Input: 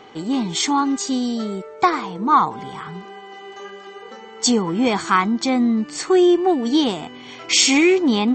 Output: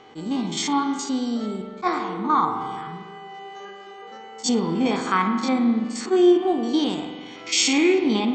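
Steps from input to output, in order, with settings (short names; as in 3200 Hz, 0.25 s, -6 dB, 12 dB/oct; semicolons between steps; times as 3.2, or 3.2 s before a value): stepped spectrum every 50 ms; spring tank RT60 1.5 s, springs 42 ms, chirp 20 ms, DRR 6 dB; attack slew limiter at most 370 dB/s; gain -3.5 dB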